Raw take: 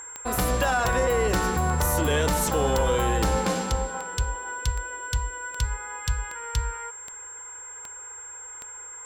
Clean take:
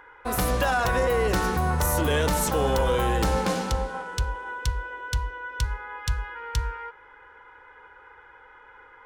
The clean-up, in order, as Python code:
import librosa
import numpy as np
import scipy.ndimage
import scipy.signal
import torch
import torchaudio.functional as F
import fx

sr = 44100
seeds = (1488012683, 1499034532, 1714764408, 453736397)

y = fx.fix_declick_ar(x, sr, threshold=10.0)
y = fx.notch(y, sr, hz=7500.0, q=30.0)